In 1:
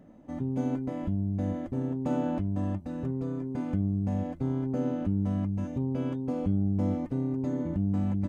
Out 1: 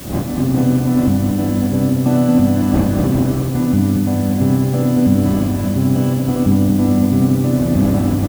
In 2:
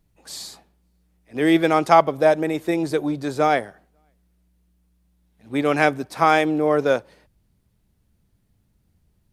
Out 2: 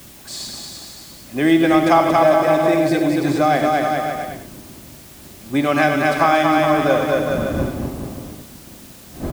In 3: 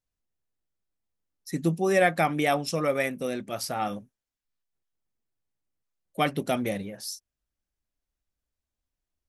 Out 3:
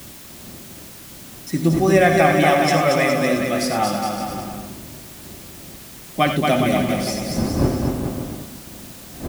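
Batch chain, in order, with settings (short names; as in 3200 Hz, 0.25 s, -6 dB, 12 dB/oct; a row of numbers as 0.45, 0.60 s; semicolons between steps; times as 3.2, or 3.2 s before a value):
wind noise 320 Hz -40 dBFS; on a send: bouncing-ball echo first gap 0.23 s, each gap 0.8×, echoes 5; on the sum: non-linear reverb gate 0.12 s rising, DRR 6.5 dB; compressor 2.5:1, threshold -17 dBFS; LPF 10000 Hz; notch comb 460 Hz; added noise white -49 dBFS; normalise peaks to -1.5 dBFS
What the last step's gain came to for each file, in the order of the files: +12.5, +5.5, +8.0 dB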